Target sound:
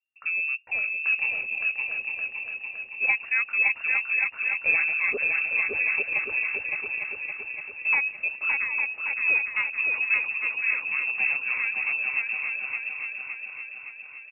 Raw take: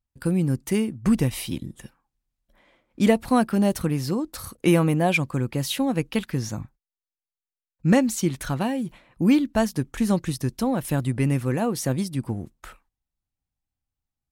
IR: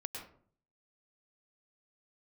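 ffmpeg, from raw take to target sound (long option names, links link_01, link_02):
-filter_complex "[0:a]asplit=2[link_01][link_02];[link_02]aecho=0:1:565|1130|1695|2260|2825|3390|3955|4520:0.668|0.374|0.21|0.117|0.0657|0.0368|0.0206|0.0115[link_03];[link_01][link_03]amix=inputs=2:normalize=0,lowpass=frequency=2400:width_type=q:width=0.5098,lowpass=frequency=2400:width_type=q:width=0.6013,lowpass=frequency=2400:width_type=q:width=0.9,lowpass=frequency=2400:width_type=q:width=2.563,afreqshift=-2800,asplit=2[link_04][link_05];[link_05]aecho=0:1:854:0.447[link_06];[link_04][link_06]amix=inputs=2:normalize=0,volume=-6dB"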